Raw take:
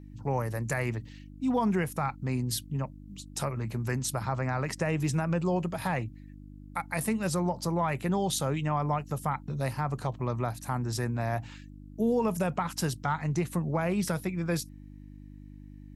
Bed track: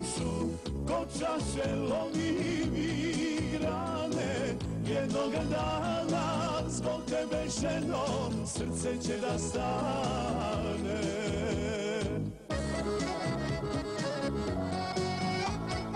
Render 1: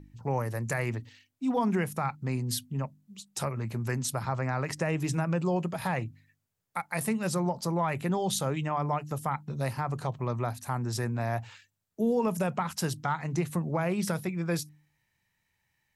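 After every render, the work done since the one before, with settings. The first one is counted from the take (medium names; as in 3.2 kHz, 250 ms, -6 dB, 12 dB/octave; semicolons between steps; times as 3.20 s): de-hum 50 Hz, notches 6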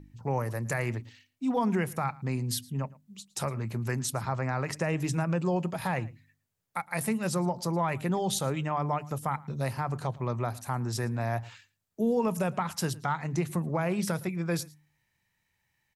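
delay 112 ms -22.5 dB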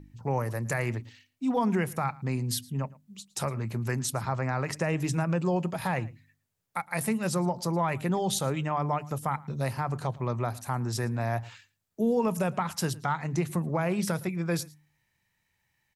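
trim +1 dB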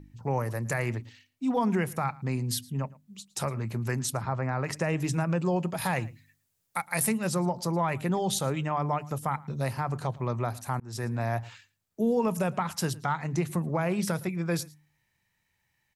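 4.17–4.64 s: treble shelf 3.8 kHz -12 dB; 5.77–7.12 s: treble shelf 3.6 kHz +9 dB; 10.80–11.21 s: fade in equal-power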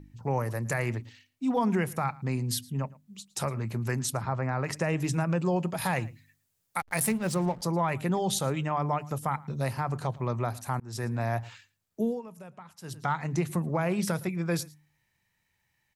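6.79–7.62 s: hysteresis with a dead band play -35 dBFS; 12.00–13.05 s: dip -18 dB, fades 0.22 s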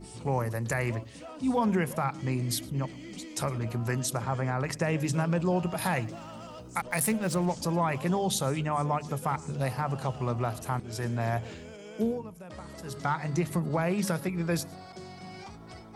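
add bed track -12 dB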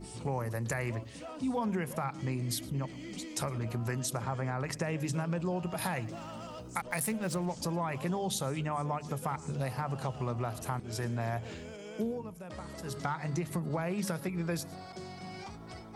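compression 2.5:1, threshold -32 dBFS, peak gain reduction 7 dB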